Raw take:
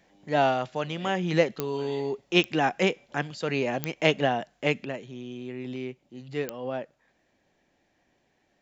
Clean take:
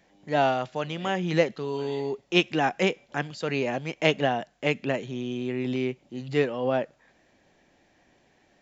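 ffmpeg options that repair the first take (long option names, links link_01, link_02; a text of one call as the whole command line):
ffmpeg -i in.wav -af "adeclick=threshold=4,asetnsamples=nb_out_samples=441:pad=0,asendcmd='4.85 volume volume 7dB',volume=0dB" out.wav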